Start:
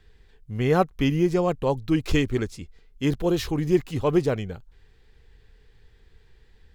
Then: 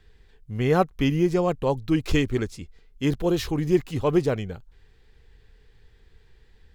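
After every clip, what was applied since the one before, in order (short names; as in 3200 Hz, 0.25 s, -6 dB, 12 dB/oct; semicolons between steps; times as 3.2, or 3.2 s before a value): nothing audible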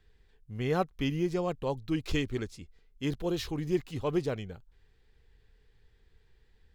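dynamic EQ 3900 Hz, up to +4 dB, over -46 dBFS, Q 1.1; gain -8.5 dB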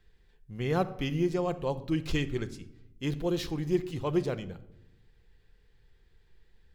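shoebox room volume 2500 m³, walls furnished, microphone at 0.85 m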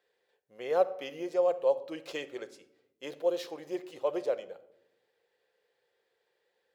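resonant high-pass 550 Hz, resonance Q 4.9; gain -5.5 dB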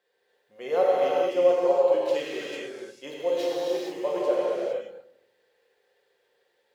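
notches 60/120 Hz; non-linear reverb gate 0.49 s flat, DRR -6 dB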